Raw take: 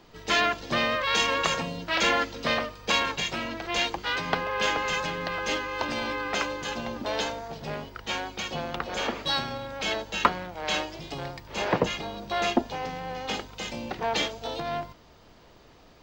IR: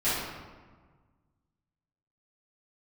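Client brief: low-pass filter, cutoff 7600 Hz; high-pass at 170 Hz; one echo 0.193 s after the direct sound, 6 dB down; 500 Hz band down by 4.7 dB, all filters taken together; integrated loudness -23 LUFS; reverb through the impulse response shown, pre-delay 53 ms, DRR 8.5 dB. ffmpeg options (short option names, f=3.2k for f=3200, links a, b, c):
-filter_complex "[0:a]highpass=170,lowpass=7.6k,equalizer=f=500:t=o:g=-6,aecho=1:1:193:0.501,asplit=2[a][b];[1:a]atrim=start_sample=2205,adelay=53[c];[b][c]afir=irnorm=-1:irlink=0,volume=-20.5dB[d];[a][d]amix=inputs=2:normalize=0,volume=5dB"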